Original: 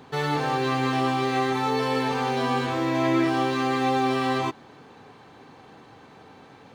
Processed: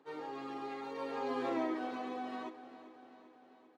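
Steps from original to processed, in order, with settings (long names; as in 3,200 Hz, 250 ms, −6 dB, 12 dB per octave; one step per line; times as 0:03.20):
source passing by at 0:02.80, 14 m/s, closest 1.8 metres
high-pass filter 270 Hz 24 dB per octave
spectral tilt −2.5 dB per octave
downward compressor 3 to 1, threshold −46 dBFS, peak gain reduction 18.5 dB
time stretch by phase vocoder 0.56×
repeating echo 394 ms, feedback 60%, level −15 dB
level +10.5 dB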